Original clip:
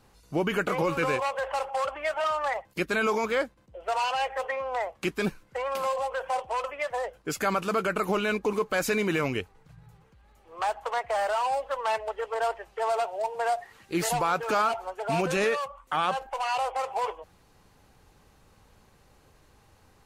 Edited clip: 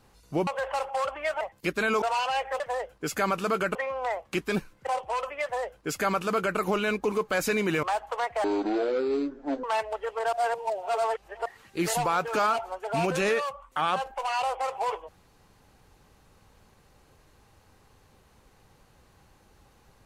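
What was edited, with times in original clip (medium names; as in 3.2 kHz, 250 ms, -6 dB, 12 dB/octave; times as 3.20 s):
0.47–1.27 s: delete
2.21–2.54 s: delete
3.15–3.87 s: delete
5.57–6.28 s: delete
6.84–7.99 s: copy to 4.45 s
9.24–10.57 s: delete
11.18–11.79 s: speed 51%
12.48–13.61 s: reverse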